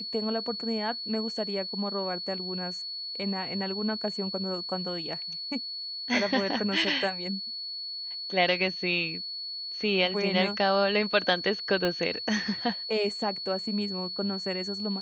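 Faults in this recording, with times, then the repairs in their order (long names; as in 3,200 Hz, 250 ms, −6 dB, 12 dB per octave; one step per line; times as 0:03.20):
whistle 4,400 Hz −34 dBFS
0:11.85: click −15 dBFS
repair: click removal
notch filter 4,400 Hz, Q 30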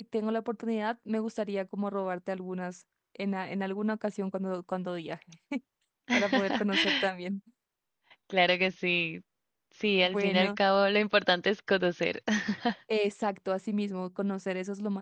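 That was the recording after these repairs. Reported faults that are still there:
0:11.85: click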